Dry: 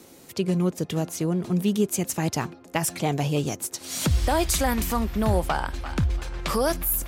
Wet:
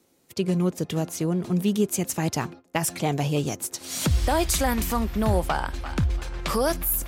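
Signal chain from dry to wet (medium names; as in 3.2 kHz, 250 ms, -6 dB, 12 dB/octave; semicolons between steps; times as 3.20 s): gate -42 dBFS, range -15 dB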